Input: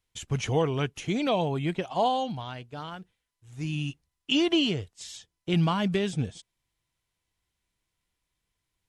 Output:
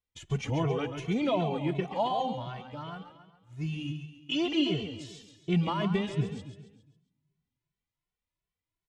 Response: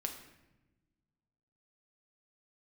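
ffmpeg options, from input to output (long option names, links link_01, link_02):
-filter_complex "[0:a]agate=range=-7dB:threshold=-50dB:ratio=16:detection=peak,lowpass=frequency=3200:poles=1,bandreject=frequency=1600:width=19,aecho=1:1:137|274|411|548|685:0.398|0.183|0.0842|0.0388|0.0178,asplit=2[link_01][link_02];[1:a]atrim=start_sample=2205[link_03];[link_02][link_03]afir=irnorm=-1:irlink=0,volume=-16dB[link_04];[link_01][link_04]amix=inputs=2:normalize=0,asplit=2[link_05][link_06];[link_06]adelay=2.2,afreqshift=2.7[link_07];[link_05][link_07]amix=inputs=2:normalize=1,volume=-1dB"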